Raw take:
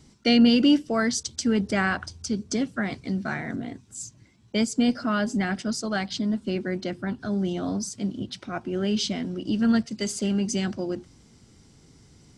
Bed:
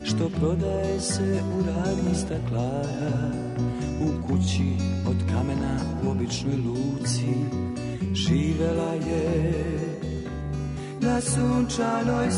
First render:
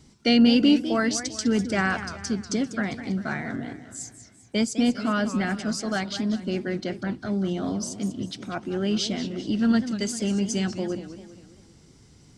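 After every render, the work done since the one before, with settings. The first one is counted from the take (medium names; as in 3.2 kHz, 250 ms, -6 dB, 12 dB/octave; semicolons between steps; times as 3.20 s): modulated delay 198 ms, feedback 47%, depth 205 cents, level -12 dB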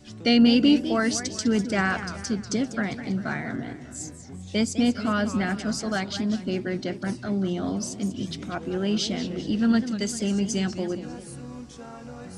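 add bed -17 dB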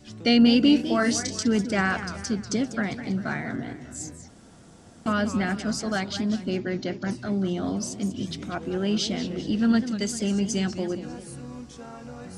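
0.76–1.43 s: doubling 30 ms -6 dB; 4.28–5.06 s: room tone; 6.57–7.11 s: brick-wall FIR low-pass 7.5 kHz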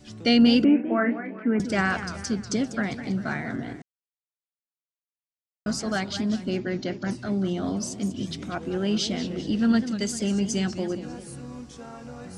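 0.64–1.60 s: Chebyshev band-pass 180–2400 Hz, order 5; 3.82–5.66 s: mute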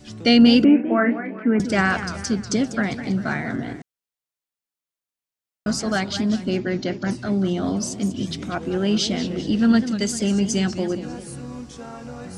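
trim +4.5 dB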